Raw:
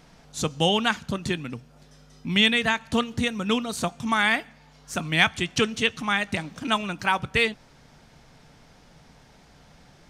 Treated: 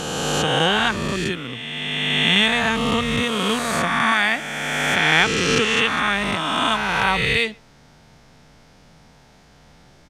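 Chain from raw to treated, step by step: reverse spectral sustain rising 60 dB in 2.65 s; speakerphone echo 120 ms, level -28 dB; trim -1 dB

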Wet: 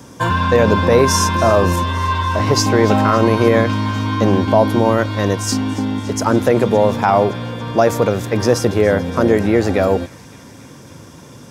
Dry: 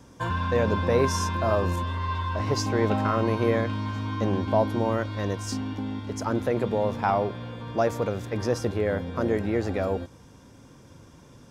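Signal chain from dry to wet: high-pass 90 Hz; treble shelf 7.8 kHz +6.5 dB; on a send: feedback echo behind a high-pass 283 ms, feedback 71%, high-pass 2.2 kHz, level -17.5 dB; on the sum: loudness maximiser +13 dB; trim -1 dB

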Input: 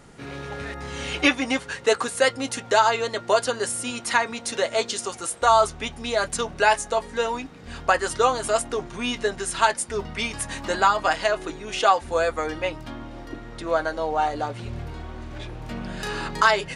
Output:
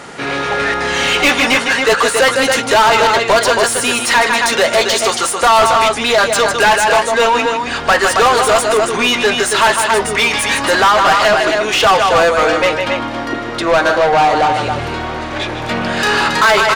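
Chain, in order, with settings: loudspeakers at several distances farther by 53 m -11 dB, 94 m -10 dB; overdrive pedal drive 27 dB, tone 4.1 kHz, clips at -4.5 dBFS; trim +1.5 dB

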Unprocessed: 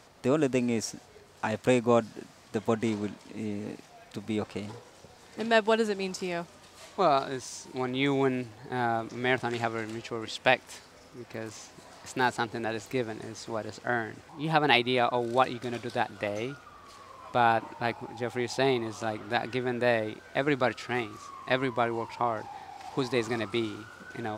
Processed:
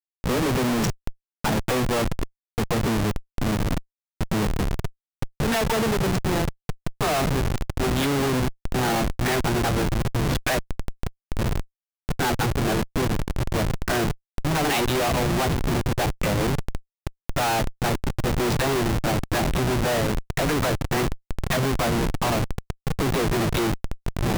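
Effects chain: phase dispersion lows, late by 48 ms, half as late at 740 Hz; band noise 110–180 Hz -41 dBFS; Schmitt trigger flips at -31 dBFS; trim +8 dB

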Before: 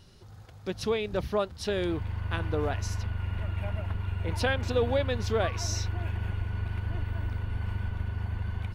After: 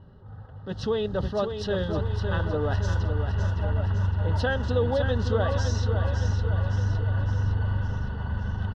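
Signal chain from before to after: in parallel at -0.5 dB: compressor with a negative ratio -32 dBFS; on the sum: Butterworth band-stop 2.3 kHz, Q 2.4; on a send: feedback delay 560 ms, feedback 56%, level -7 dB; on the sum: level-controlled noise filter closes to 1.2 kHz, open at -24 dBFS; low-pass 3.6 kHz 12 dB/octave; comb of notches 350 Hz; attacks held to a fixed rise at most 190 dB/s

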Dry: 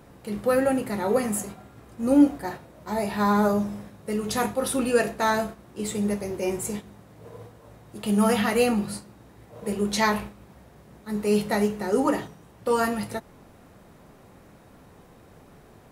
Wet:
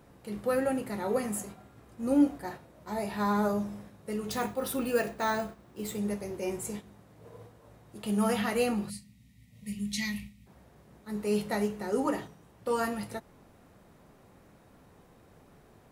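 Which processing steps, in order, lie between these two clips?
4.31–5.99 s: careless resampling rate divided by 2×, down filtered, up hold; 8.90–10.47 s: time-frequency box 260–1800 Hz -23 dB; trim -6.5 dB

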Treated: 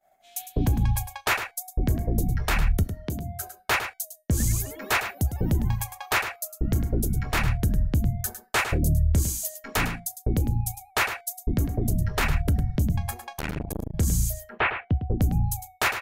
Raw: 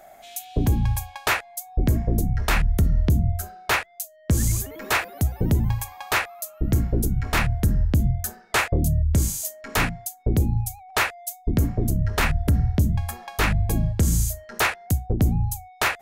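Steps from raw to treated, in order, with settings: 2.83–3.49 s: high-pass 290 Hz 6 dB/octave; expander -36 dBFS; reverb removal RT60 0.58 s; 14.49–15.18 s: steep low-pass 3 kHz 36 dB/octave; peak limiter -15.5 dBFS, peak gain reduction 4 dB; feedback comb 760 Hz, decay 0.24 s, mix 50%; echo from a far wall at 18 m, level -9 dB; 13.21–13.94 s: transformer saturation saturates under 420 Hz; trim +5.5 dB

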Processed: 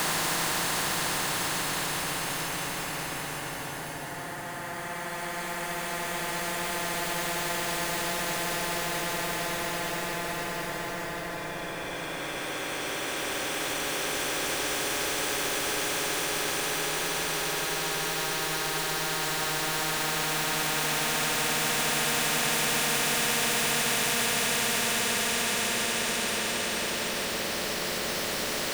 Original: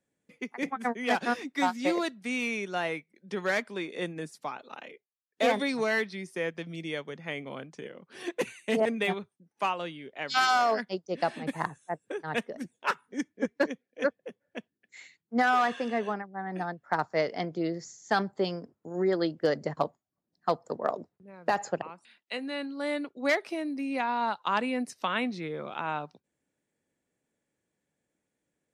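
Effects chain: small samples zeroed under -45 dBFS; Paulstretch 34×, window 0.25 s, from 11.68 s; spectrum-flattening compressor 4:1; trim +4 dB

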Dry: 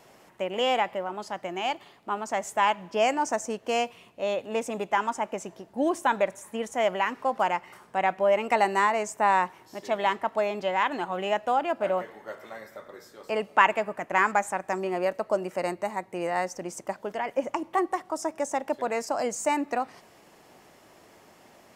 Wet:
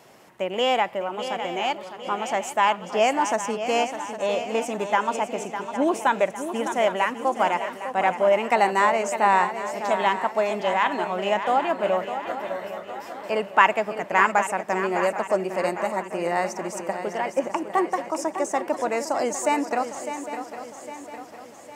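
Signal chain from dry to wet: high-pass 69 Hz; on a send: shuffle delay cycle 806 ms, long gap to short 3:1, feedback 48%, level -10 dB; on the sum: trim +3 dB

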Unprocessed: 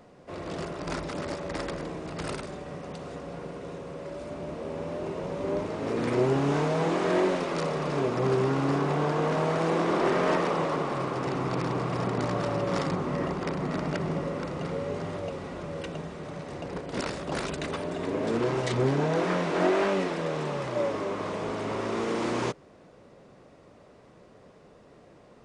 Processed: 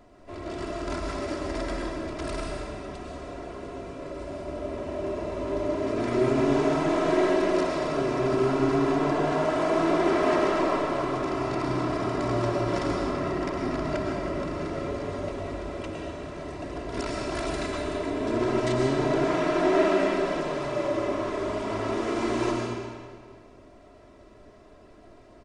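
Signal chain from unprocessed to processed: bass shelf 76 Hz +12 dB; comb 3 ms, depth 64%; algorithmic reverb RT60 1.8 s, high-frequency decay 0.9×, pre-delay 75 ms, DRR -1 dB; trim -3.5 dB

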